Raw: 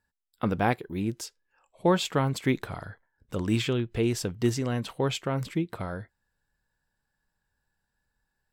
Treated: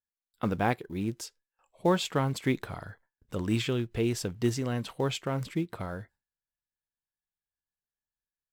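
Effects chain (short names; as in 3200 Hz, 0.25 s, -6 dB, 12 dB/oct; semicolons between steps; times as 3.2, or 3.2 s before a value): gate with hold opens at -57 dBFS; in parallel at -10.5 dB: short-mantissa float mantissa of 2-bit; on the sum: gain -4.5 dB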